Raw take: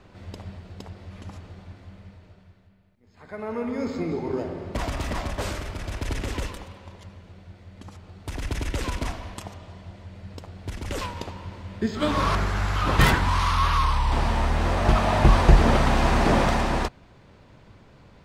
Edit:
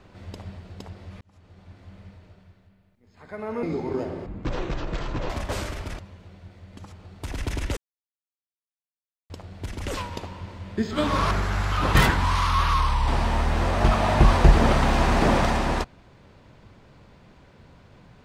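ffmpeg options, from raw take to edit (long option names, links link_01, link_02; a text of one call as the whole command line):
ffmpeg -i in.wav -filter_complex "[0:a]asplit=8[link_01][link_02][link_03][link_04][link_05][link_06][link_07][link_08];[link_01]atrim=end=1.21,asetpts=PTS-STARTPTS,afade=type=out:start_time=1.206:duration=0.004:curve=hsin[link_09];[link_02]atrim=start=1.21:end=3.632,asetpts=PTS-STARTPTS,afade=type=in:duration=0.79[link_10];[link_03]atrim=start=4.018:end=4.654[link_11];[link_04]atrim=start=4.65:end=5.19,asetpts=PTS-STARTPTS,asetrate=22932,aresample=44100,atrim=end_sample=45796,asetpts=PTS-STARTPTS[link_12];[link_05]atrim=start=5.186:end=5.882[link_13];[link_06]atrim=start=7.028:end=8.81,asetpts=PTS-STARTPTS,afade=type=out:start_time=1.778:duration=0.004:curve=hsin[link_14];[link_07]atrim=start=8.81:end=10.34,asetpts=PTS-STARTPTS,volume=0[link_15];[link_08]atrim=start=10.34,asetpts=PTS-STARTPTS,afade=type=in:duration=0.004:curve=hsin[link_16];[link_09][link_10]concat=n=2:v=0:a=1[link_17];[link_17][link_11]acrossfade=duration=0.004:curve1=hsin:curve2=hsin[link_18];[link_18][link_12]acrossfade=duration=0.004:curve1=hsin:curve2=hsin[link_19];[link_19][link_13]acrossfade=duration=0.004:curve1=hsin:curve2=hsin[link_20];[link_14][link_15][link_16]concat=n=3:v=0:a=1[link_21];[link_20][link_21]acrossfade=duration=0.004:curve1=hsin:curve2=hsin" out.wav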